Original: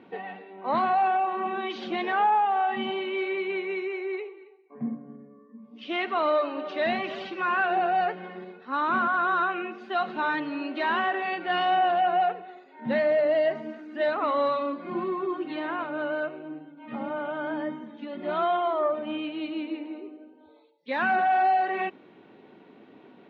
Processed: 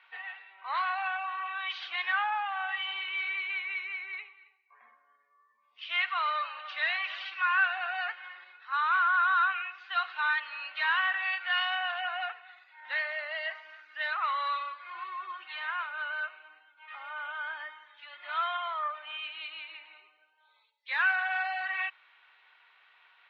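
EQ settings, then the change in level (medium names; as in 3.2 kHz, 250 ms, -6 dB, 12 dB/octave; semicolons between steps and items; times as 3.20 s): high-pass 1.2 kHz 24 dB/octave; distance through air 210 m; treble shelf 2.3 kHz +7 dB; +2.0 dB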